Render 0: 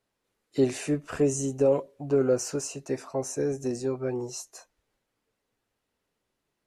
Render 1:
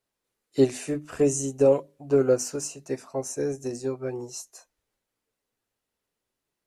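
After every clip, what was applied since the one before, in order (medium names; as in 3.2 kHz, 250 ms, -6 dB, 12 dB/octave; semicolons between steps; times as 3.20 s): treble shelf 5.7 kHz +7 dB; hum notches 50/100/150/200/250/300 Hz; upward expansion 1.5:1, over -36 dBFS; trim +4 dB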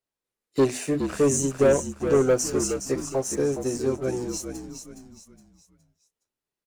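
waveshaping leveller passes 2; on a send: frequency-shifting echo 416 ms, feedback 36%, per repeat -53 Hz, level -8 dB; on the sum: trim -3.5 dB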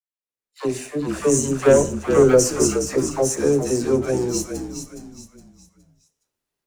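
fade-in on the opening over 1.86 s; phase dispersion lows, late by 83 ms, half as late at 550 Hz; on a send at -15 dB: reverberation RT60 0.60 s, pre-delay 38 ms; on the sum: trim +6 dB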